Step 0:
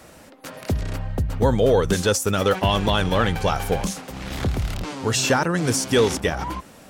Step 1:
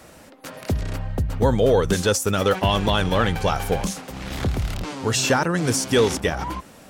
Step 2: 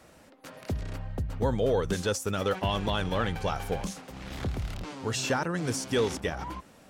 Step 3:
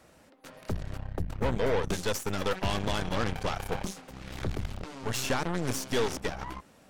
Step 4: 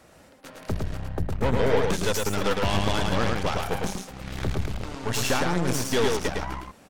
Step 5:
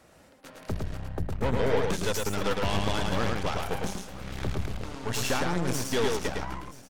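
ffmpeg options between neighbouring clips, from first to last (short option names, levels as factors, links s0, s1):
-af anull
-af "highshelf=f=8200:g=-5,volume=0.376"
-af "aeval=exprs='0.188*(cos(1*acos(clip(val(0)/0.188,-1,1)))-cos(1*PI/2))+0.0335*(cos(8*acos(clip(val(0)/0.188,-1,1)))-cos(8*PI/2))':c=same,volume=0.708"
-af "aecho=1:1:109:0.668,volume=1.58"
-af "aecho=1:1:980|1960|2940:0.112|0.0471|0.0198,volume=0.668"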